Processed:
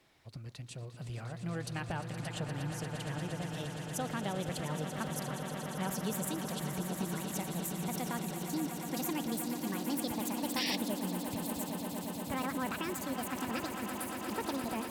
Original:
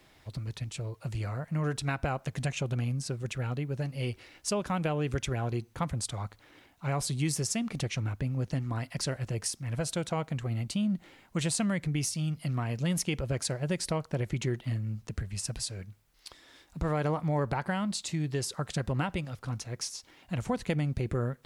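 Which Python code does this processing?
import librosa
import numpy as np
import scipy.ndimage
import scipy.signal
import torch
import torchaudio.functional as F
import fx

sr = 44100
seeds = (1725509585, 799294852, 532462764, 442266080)

p1 = fx.speed_glide(x, sr, from_pct=102, to_pct=186)
p2 = fx.low_shelf(p1, sr, hz=70.0, db=-9.0)
p3 = p2 + fx.echo_swell(p2, sr, ms=117, loudest=8, wet_db=-11, dry=0)
p4 = fx.spec_paint(p3, sr, seeds[0], shape='noise', start_s=10.56, length_s=0.2, low_hz=1700.0, high_hz=5800.0, level_db=-28.0)
y = p4 * librosa.db_to_amplitude(-7.0)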